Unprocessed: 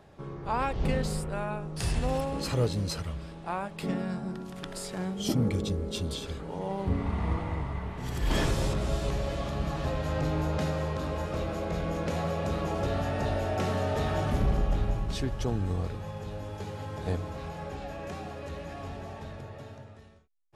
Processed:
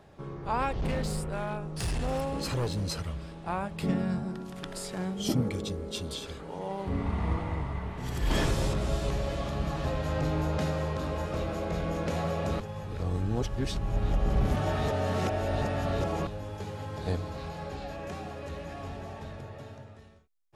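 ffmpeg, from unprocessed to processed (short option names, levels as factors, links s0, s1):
-filter_complex "[0:a]asettb=1/sr,asplit=3[s0][s1][s2];[s0]atrim=end=0.724[s3];[s1]atrim=start=0.72:end=2.87,asetpts=PTS-STARTPTS,afade=t=in:d=0.004:c=qsin,afade=t=out:st=2.146:d=0.004:c=qsin,asoftclip=type=hard:threshold=0.0501[s4];[s2]atrim=start=2.866[s5];[s3][s4]acrossfade=d=0.004:c1=hsin:c2=qsin[s6];[s6][s5]acrossfade=d=0.004:c1=qsin:c2=hsin,asettb=1/sr,asplit=3[s7][s8][s9];[s7]atrim=end=3.464[s10];[s8]atrim=start=3.46:end=4.23,asetpts=PTS-STARTPTS,afade=t=in:d=0.004:c=qsin,afade=t=out:st=0.766:d=0.004:c=qsin,equalizer=f=71:w=0.73:g=12[s11];[s9]atrim=start=4.226[s12];[s10][s11]acrossfade=d=0.004:c1=hsin:c2=qsin[s13];[s13][s12]acrossfade=d=0.004:c1=qsin:c2=hsin,asettb=1/sr,asplit=3[s14][s15][s16];[s14]atrim=end=5.414[s17];[s15]atrim=start=5.41:end=6.93,asetpts=PTS-STARTPTS,afade=t=in:d=0.004:c=qsin,afade=t=out:st=1.516:d=0.004:c=qsin,lowshelf=f=270:g=-6.5[s18];[s16]atrim=start=6.926[s19];[s17][s18]acrossfade=d=0.004:c1=hsin:c2=qsin[s20];[s20][s19]acrossfade=d=0.004:c1=qsin:c2=hsin,asettb=1/sr,asplit=3[s21][s22][s23];[s21]atrim=end=16.944[s24];[s22]atrim=start=16.94:end=17.96,asetpts=PTS-STARTPTS,afade=t=in:d=0.004:c=qsin,afade=t=out:st=1.016:d=0.004:c=qsin,equalizer=f=4300:w=3.3:g=6[s25];[s23]atrim=start=17.956[s26];[s24][s25]acrossfade=d=0.004:c1=hsin:c2=qsin[s27];[s27][s26]acrossfade=d=0.004:c1=qsin:c2=hsin,asplit=3[s28][s29][s30];[s28]atrim=end=12.602[s31];[s29]atrim=start=12.598:end=16.272,asetpts=PTS-STARTPTS,areverse[s32];[s30]atrim=start=16.268[s33];[s31][s32]acrossfade=d=0.004:c1=hsin:c2=hsin[s34];[s34][s33]acrossfade=d=0.004:c1=hsin:c2=hsin"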